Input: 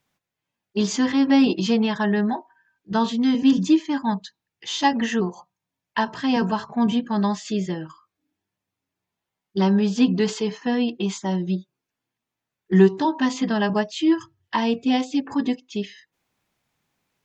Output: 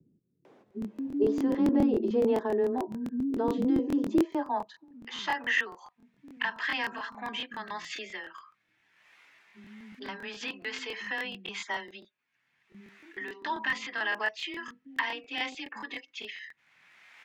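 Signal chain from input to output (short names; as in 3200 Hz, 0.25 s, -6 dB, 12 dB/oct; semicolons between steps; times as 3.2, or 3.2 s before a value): in parallel at -3 dB: upward compressor, threshold -20 dBFS; on the sum: limiter -11 dBFS, peak gain reduction 11.5 dB; tremolo 1.6 Hz, depth 35%; frequency shift +14 Hz; band-pass sweep 400 Hz -> 2000 Hz, 3.59–5.15; bands offset in time lows, highs 0.45 s, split 240 Hz; crackling interface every 0.14 s, samples 1024, repeat, from 0.66; gain +2.5 dB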